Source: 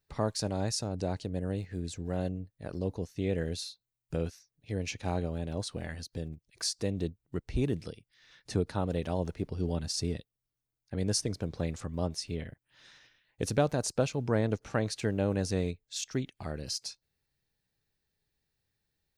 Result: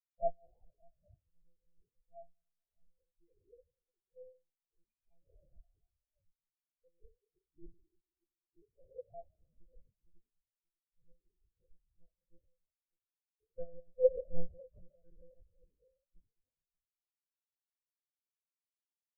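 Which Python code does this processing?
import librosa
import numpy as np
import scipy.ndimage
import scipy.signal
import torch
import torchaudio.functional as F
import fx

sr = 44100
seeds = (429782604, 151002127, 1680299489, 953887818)

y = scipy.signal.sosfilt(scipy.signal.butter(2, 47.0, 'highpass', fs=sr, output='sos'), x)
y = fx.hum_notches(y, sr, base_hz=50, count=4)
y = fx.rev_schroeder(y, sr, rt60_s=2.6, comb_ms=33, drr_db=-0.5)
y = fx.filter_lfo_lowpass(y, sr, shape='saw_up', hz=0.57, low_hz=510.0, high_hz=2900.0, q=2.8)
y = fx.doubler(y, sr, ms=14.0, db=-3.0)
y = y + 10.0 ** (-9.0 / 20.0) * np.pad(y, (int(593 * sr / 1000.0), 0))[:len(y)]
y = fx.lpc_monotone(y, sr, seeds[0], pitch_hz=170.0, order=8)
y = fx.spectral_expand(y, sr, expansion=4.0)
y = y * librosa.db_to_amplitude(-8.5)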